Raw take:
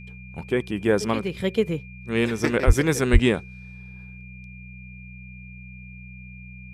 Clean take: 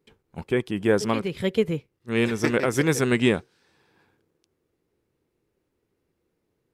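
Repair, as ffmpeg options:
-filter_complex "[0:a]bandreject=f=62.2:t=h:w=4,bandreject=f=124.4:t=h:w=4,bandreject=f=186.6:t=h:w=4,bandreject=f=2400:w=30,asplit=3[s0][s1][s2];[s0]afade=t=out:st=2.66:d=0.02[s3];[s1]highpass=f=140:w=0.5412,highpass=f=140:w=1.3066,afade=t=in:st=2.66:d=0.02,afade=t=out:st=2.78:d=0.02[s4];[s2]afade=t=in:st=2.78:d=0.02[s5];[s3][s4][s5]amix=inputs=3:normalize=0,asplit=3[s6][s7][s8];[s6]afade=t=out:st=3.12:d=0.02[s9];[s7]highpass=f=140:w=0.5412,highpass=f=140:w=1.3066,afade=t=in:st=3.12:d=0.02,afade=t=out:st=3.24:d=0.02[s10];[s8]afade=t=in:st=3.24:d=0.02[s11];[s9][s10][s11]amix=inputs=3:normalize=0"

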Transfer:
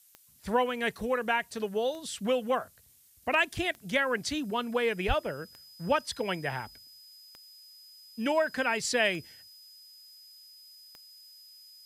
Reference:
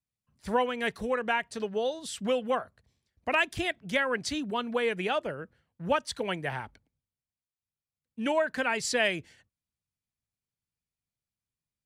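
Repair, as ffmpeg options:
-filter_complex "[0:a]adeclick=t=4,bandreject=f=5000:w=30,asplit=3[s0][s1][s2];[s0]afade=t=out:st=5.07:d=0.02[s3];[s1]highpass=f=140:w=0.5412,highpass=f=140:w=1.3066,afade=t=in:st=5.07:d=0.02,afade=t=out:st=5.19:d=0.02[s4];[s2]afade=t=in:st=5.19:d=0.02[s5];[s3][s4][s5]amix=inputs=3:normalize=0,afftdn=nr=30:nf=-55"

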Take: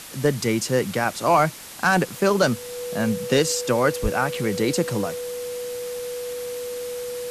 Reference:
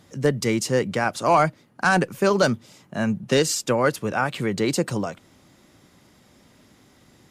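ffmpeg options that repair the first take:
-filter_complex "[0:a]bandreject=f=490:w=30,asplit=3[s0][s1][s2];[s0]afade=t=out:st=4.02:d=0.02[s3];[s1]highpass=f=140:w=0.5412,highpass=f=140:w=1.3066,afade=t=in:st=4.02:d=0.02,afade=t=out:st=4.14:d=0.02[s4];[s2]afade=t=in:st=4.14:d=0.02[s5];[s3][s4][s5]amix=inputs=3:normalize=0,afftdn=nr=21:nf=-35"

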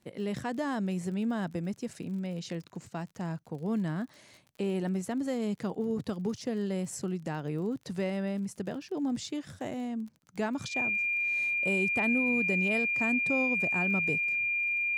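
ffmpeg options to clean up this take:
-af "adeclick=t=4,bandreject=f=2400:w=30"

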